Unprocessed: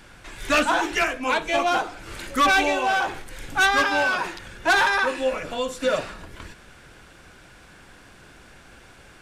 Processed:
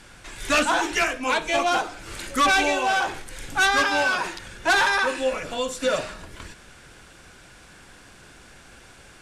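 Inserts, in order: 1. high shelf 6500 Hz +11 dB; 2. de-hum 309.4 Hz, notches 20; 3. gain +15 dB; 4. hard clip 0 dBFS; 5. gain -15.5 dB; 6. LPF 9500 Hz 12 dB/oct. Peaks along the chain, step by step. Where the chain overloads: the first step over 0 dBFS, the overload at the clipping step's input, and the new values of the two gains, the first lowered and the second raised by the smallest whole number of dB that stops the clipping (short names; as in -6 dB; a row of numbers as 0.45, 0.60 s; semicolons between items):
-8.5, -9.0, +6.0, 0.0, -15.5, -14.5 dBFS; step 3, 6.0 dB; step 3 +9 dB, step 5 -9.5 dB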